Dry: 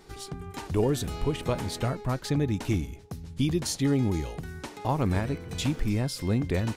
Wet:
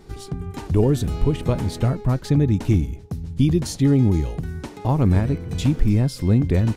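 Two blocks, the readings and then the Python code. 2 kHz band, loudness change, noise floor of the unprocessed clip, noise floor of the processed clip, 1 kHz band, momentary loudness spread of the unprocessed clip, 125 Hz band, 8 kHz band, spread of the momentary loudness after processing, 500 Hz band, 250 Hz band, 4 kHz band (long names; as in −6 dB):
+0.5 dB, +8.0 dB, −46 dBFS, −39 dBFS, +2.0 dB, 12 LU, +10.0 dB, 0.0 dB, 13 LU, +5.0 dB, +8.0 dB, 0.0 dB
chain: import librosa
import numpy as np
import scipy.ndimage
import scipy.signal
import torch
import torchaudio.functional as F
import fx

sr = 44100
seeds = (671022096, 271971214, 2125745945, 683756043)

y = fx.low_shelf(x, sr, hz=400.0, db=11.0)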